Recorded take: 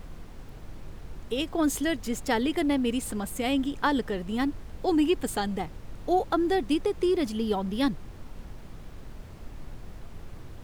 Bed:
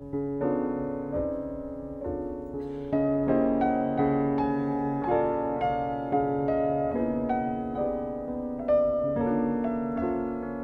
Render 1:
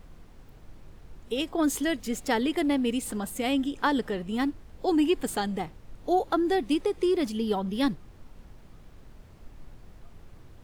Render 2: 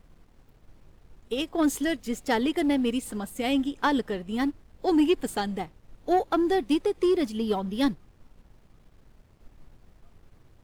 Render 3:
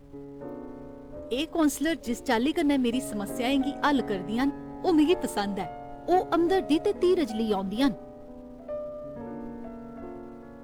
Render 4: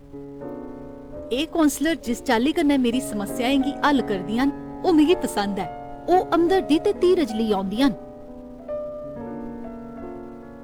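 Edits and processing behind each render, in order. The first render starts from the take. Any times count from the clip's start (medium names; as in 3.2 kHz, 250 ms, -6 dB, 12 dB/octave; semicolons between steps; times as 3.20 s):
noise print and reduce 7 dB
waveshaping leveller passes 1; upward expansion 1.5:1, over -36 dBFS
add bed -12 dB
trim +5 dB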